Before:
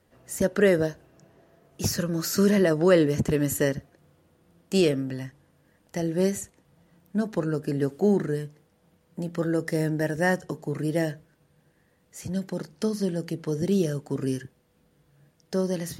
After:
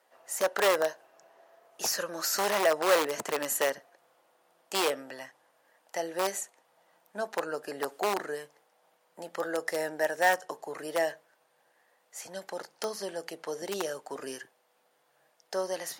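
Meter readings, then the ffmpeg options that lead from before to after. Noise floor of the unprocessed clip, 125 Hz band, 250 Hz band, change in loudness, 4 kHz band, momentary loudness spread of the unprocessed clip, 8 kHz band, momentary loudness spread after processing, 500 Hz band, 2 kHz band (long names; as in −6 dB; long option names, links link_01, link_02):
−66 dBFS, −26.5 dB, −16.5 dB, −5.0 dB, +1.5 dB, 14 LU, +0.5 dB, 16 LU, −5.0 dB, +0.5 dB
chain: -filter_complex "[0:a]asplit=2[link_01][link_02];[link_02]aeval=exprs='(mod(5.31*val(0)+1,2)-1)/5.31':channel_layout=same,volume=-6.5dB[link_03];[link_01][link_03]amix=inputs=2:normalize=0,highpass=frequency=740:width_type=q:width=1.8,volume=-3.5dB"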